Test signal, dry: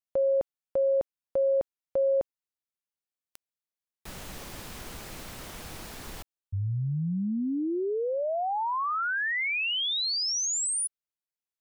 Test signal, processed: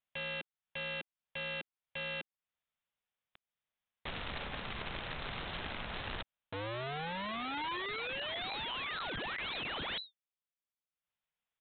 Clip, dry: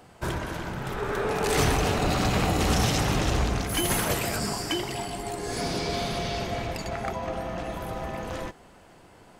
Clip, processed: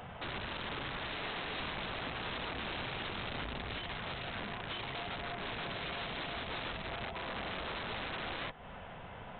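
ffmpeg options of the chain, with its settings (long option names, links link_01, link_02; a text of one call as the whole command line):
ffmpeg -i in.wav -af "equalizer=frequency=330:width_type=o:width=0.56:gain=-14,acompressor=threshold=-37dB:ratio=20:attack=0.48:release=404:knee=1:detection=rms,aresample=8000,aeval=exprs='(mod(112*val(0)+1,2)-1)/112':channel_layout=same,aresample=44100,volume=6.5dB" out.wav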